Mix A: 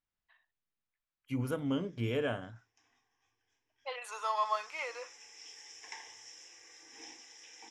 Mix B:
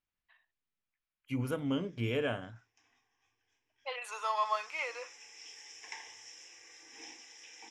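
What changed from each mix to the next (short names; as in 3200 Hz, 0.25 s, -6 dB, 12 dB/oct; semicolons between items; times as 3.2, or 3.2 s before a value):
master: add bell 2500 Hz +4 dB 0.59 oct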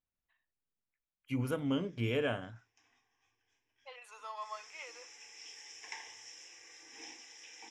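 second voice -11.5 dB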